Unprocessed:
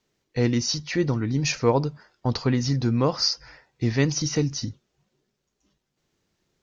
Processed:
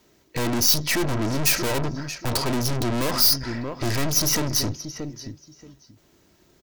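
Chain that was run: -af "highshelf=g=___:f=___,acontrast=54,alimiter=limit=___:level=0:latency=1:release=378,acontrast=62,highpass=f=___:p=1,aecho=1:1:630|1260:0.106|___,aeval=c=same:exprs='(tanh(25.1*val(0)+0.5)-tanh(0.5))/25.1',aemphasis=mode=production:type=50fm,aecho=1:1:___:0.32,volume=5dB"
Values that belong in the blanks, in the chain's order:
-11, 2500, -9dB, 40, 0.0191, 3.1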